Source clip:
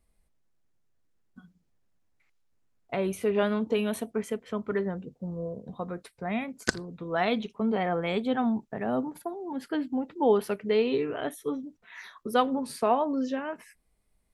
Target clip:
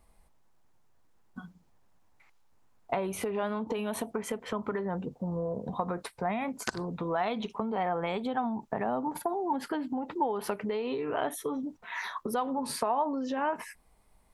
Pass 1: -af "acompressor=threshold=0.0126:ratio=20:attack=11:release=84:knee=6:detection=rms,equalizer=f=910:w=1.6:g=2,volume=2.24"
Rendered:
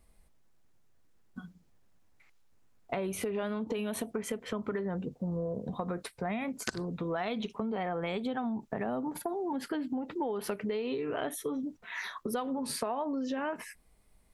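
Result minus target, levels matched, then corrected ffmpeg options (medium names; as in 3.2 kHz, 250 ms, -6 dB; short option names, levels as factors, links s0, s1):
1 kHz band -4.5 dB
-af "acompressor=threshold=0.0126:ratio=20:attack=11:release=84:knee=6:detection=rms,equalizer=f=910:w=1.6:g=10.5,volume=2.24"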